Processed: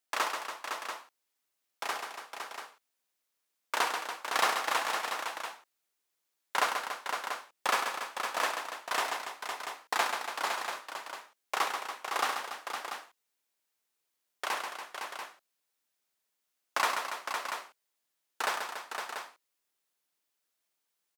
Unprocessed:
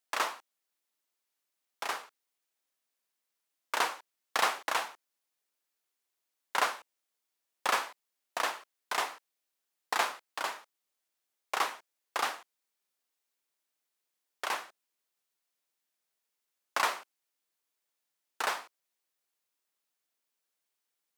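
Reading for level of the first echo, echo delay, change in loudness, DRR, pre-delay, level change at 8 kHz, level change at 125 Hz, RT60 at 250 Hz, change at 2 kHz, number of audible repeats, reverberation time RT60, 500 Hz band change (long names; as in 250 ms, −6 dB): −6.5 dB, 135 ms, 0.0 dB, no reverb audible, no reverb audible, +2.5 dB, can't be measured, no reverb audible, +2.5 dB, 4, no reverb audible, +2.0 dB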